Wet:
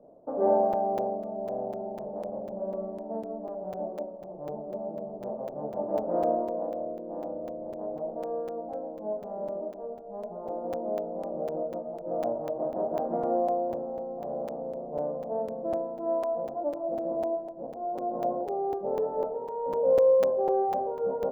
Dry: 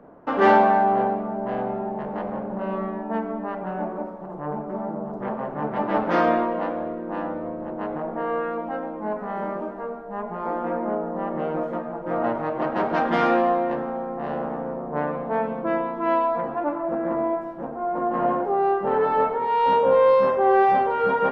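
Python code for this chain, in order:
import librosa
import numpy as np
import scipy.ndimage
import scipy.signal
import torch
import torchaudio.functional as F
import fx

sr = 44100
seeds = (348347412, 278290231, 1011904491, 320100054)

y = fx.ladder_lowpass(x, sr, hz=690.0, resonance_pct=60)
y = fx.buffer_crackle(y, sr, first_s=0.73, period_s=0.25, block=256, kind='zero')
y = y * librosa.db_to_amplitude(-1.0)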